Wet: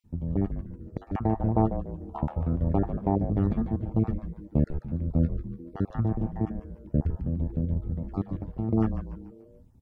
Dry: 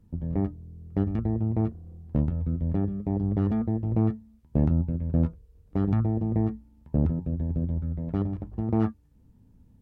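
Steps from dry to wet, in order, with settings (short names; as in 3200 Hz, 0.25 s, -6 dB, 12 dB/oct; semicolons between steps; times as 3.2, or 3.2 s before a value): random spectral dropouts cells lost 32%; 1.1–3.19 bell 870 Hz +14 dB 1.6 oct; frequency-shifting echo 0.145 s, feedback 47%, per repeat -140 Hz, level -8 dB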